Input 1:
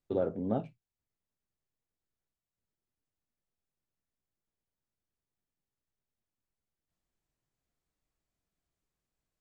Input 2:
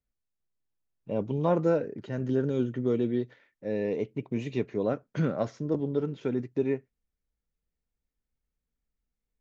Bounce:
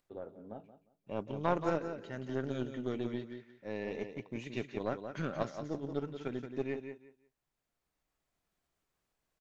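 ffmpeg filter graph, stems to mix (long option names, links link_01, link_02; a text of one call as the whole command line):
ffmpeg -i stem1.wav -i stem2.wav -filter_complex "[0:a]highshelf=frequency=2300:gain=-9,acompressor=mode=upward:threshold=-50dB:ratio=2.5,volume=-5dB,asplit=2[link_01][link_02];[link_02]volume=-13dB[link_03];[1:a]equalizer=frequency=480:width_type=o:width=0.22:gain=-6.5,volume=1dB,asplit=3[link_04][link_05][link_06];[link_05]volume=-6.5dB[link_07];[link_06]apad=whole_len=414632[link_08];[link_01][link_08]sidechaincompress=threshold=-36dB:ratio=4:attack=38:release=1490[link_09];[link_03][link_07]amix=inputs=2:normalize=0,aecho=0:1:177|354|531:1|0.21|0.0441[link_10];[link_09][link_04][link_10]amix=inputs=3:normalize=0,lowshelf=frequency=450:gain=-11,aeval=exprs='0.266*(cos(1*acos(clip(val(0)/0.266,-1,1)))-cos(1*PI/2))+0.00841*(cos(5*acos(clip(val(0)/0.266,-1,1)))-cos(5*PI/2))+0.0133*(cos(6*acos(clip(val(0)/0.266,-1,1)))-cos(6*PI/2))+0.0211*(cos(7*acos(clip(val(0)/0.266,-1,1)))-cos(7*PI/2))':channel_layout=same" out.wav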